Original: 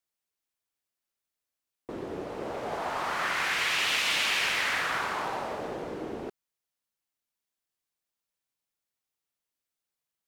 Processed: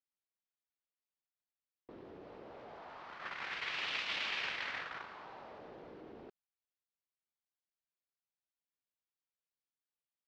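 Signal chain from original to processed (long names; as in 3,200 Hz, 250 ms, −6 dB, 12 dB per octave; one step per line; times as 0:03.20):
low-pass filter 4,800 Hz 24 dB per octave
noise gate −24 dBFS, range −56 dB
envelope flattener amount 70%
level +4.5 dB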